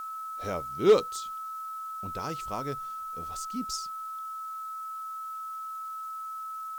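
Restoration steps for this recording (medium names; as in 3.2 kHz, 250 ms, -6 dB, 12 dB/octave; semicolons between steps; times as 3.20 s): clip repair -12.5 dBFS; band-stop 1.3 kHz, Q 30; noise print and reduce 30 dB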